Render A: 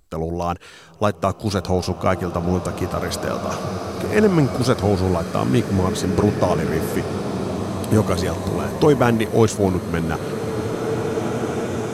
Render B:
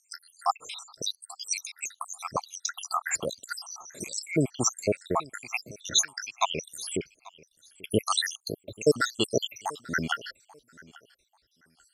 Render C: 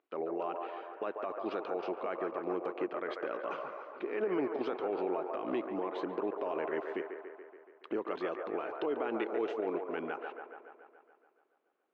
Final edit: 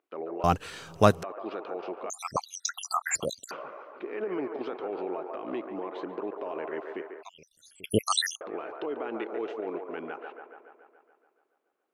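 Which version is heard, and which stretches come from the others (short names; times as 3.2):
C
0.44–1.23 from A
2.1–3.51 from B
7.23–8.41 from B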